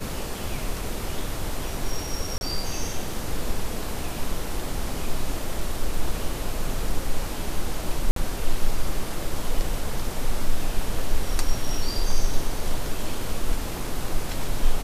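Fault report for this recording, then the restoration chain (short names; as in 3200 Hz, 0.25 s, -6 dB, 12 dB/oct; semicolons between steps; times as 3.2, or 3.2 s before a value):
2.38–2.41 gap 31 ms
8.11–8.16 gap 53 ms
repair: interpolate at 2.38, 31 ms; interpolate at 8.11, 53 ms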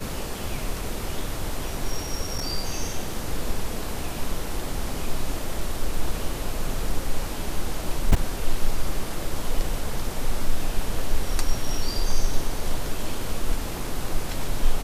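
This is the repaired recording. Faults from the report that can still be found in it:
none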